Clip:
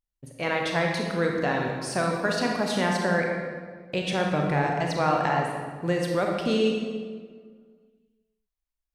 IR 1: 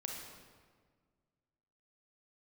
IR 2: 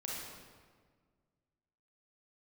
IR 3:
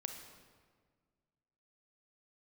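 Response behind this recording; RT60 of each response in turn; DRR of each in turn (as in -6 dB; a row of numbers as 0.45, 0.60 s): 1; 1.7, 1.7, 1.7 s; 0.0, -4.5, 4.5 dB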